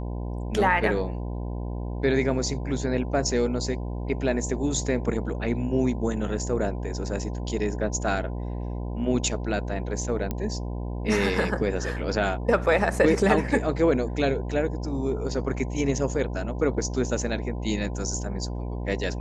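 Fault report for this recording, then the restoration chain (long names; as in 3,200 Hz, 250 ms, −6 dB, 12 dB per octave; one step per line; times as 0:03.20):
mains buzz 60 Hz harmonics 17 −31 dBFS
0:10.31: click −15 dBFS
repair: click removal
hum removal 60 Hz, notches 17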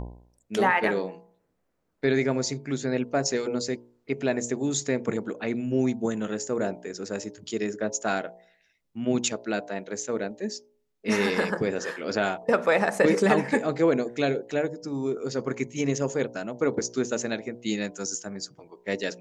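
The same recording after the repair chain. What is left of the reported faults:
none of them is left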